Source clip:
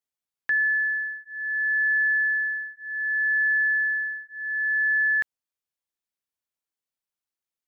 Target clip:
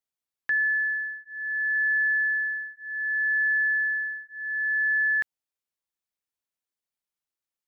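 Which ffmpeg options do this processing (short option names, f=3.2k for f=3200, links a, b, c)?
-filter_complex "[0:a]asettb=1/sr,asplit=3[a][b][c];[a]atrim=end=0.944[d];[b]atrim=start=0.94:end=1.76,asetpts=PTS-STARTPTS,afade=t=in:d=0.004:c=qsin,afade=t=out:st=0.816:d=0.004:c=qsin,bass=f=250:g=13,treble=f=4k:g=-8[e];[c]atrim=start=1.756[f];[d][e]acrossfade=d=0.004:c1=hsin:c2=qsin[g];[g][f]acrossfade=d=0.004:c1=qsin:c2=hsin,volume=-1.5dB"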